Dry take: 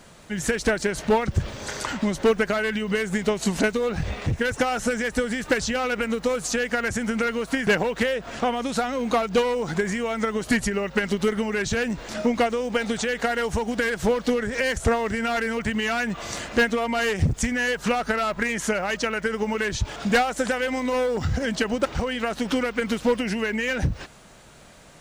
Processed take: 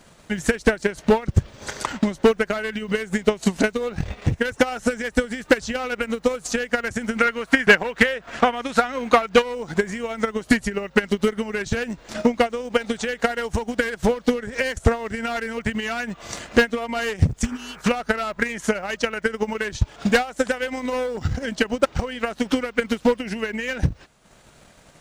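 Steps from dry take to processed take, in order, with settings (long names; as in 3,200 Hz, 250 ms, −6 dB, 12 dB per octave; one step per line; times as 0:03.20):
0:07.18–0:09.42: parametric band 1,700 Hz +7 dB 1.9 octaves
0:17.47–0:17.79: healed spectral selection 330–2,500 Hz after
transient designer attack +9 dB, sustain −8 dB
level −2.5 dB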